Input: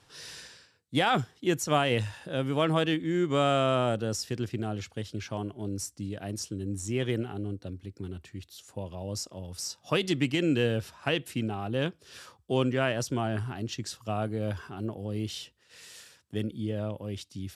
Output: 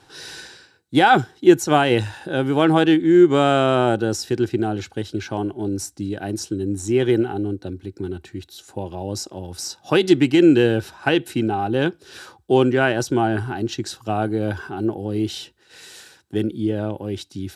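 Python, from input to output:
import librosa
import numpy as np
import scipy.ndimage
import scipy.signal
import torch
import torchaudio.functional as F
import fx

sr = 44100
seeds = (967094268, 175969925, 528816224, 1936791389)

y = fx.small_body(x, sr, hz=(350.0, 800.0, 1500.0, 3900.0), ring_ms=30, db=11)
y = F.gain(torch.from_numpy(y), 5.5).numpy()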